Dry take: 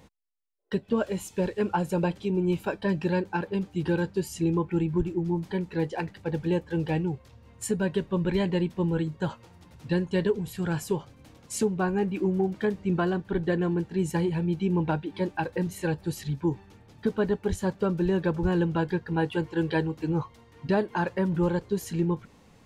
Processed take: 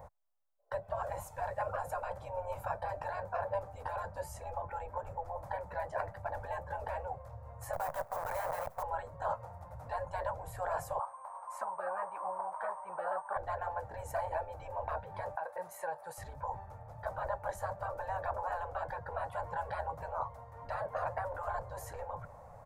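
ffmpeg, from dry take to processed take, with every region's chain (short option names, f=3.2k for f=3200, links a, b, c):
-filter_complex "[0:a]asettb=1/sr,asplit=3[a][b][c];[a]atrim=end=7.734[d];[b]atrim=start=7.73:end=8.83,asetpts=PTS-STARTPTS,afade=t=in:d=0.004:c=qsin,afade=t=out:st=1.096:d=0.004:c=qsin,highpass=f=460:p=1,acrusher=bits=7:dc=4:mix=0:aa=0.000001[e];[c]atrim=start=8.826[f];[d][e]acrossfade=d=0.004:c1=hsin:c2=qsin[g];[g][f]acrossfade=d=0.004:c1=qsin:c2=hsin,asettb=1/sr,asplit=3[h][i][j];[h]atrim=end=10.994[k];[i]atrim=start=10.99:end=13.37,asetpts=PTS-STARTPTS,afade=t=in:d=0.004:c=qsin,afade=t=out:st=2.376:d=0.004:c=qsin,highpass=f=1k:t=q:w=7.1,equalizer=f=8.8k:t=o:w=2.9:g=-14,aeval=exprs='val(0)+0.000891*sin(2*PI*8600*n/s)':c=same[l];[j]atrim=start=13.366[m];[k][l]acrossfade=d=0.004:c1=hsin:c2=qsin[n];[n][m]acrossfade=d=0.004:c1=qsin:c2=hsin,asettb=1/sr,asplit=3[o][p][q];[o]atrim=end=15.354[r];[p]atrim=start=15.35:end=16.18,asetpts=PTS-STARTPTS,afade=t=in:d=0.004:c=qsin,afade=t=out:st=0.826:d=0.004:c=qsin,highpass=680,acompressor=threshold=-38dB:ratio=6:attack=3.2:release=140:knee=1:detection=peak,equalizer=f=10k:w=4.9:g=8[s];[q]atrim=start=16.176[t];[r][s]acrossfade=d=0.004:c1=hsin:c2=qsin[u];[u][t]acrossfade=d=0.004:c1=qsin:c2=hsin,aemphasis=mode=production:type=50kf,afftfilt=real='re*lt(hypot(re,im),0.0708)':imag='im*lt(hypot(re,im),0.0708)':win_size=1024:overlap=0.75,firequalizer=gain_entry='entry(120,0);entry(210,-18);entry(360,-19);entry(580,10);entry(2900,-27);entry(7700,-21)':delay=0.05:min_phase=1,volume=4.5dB"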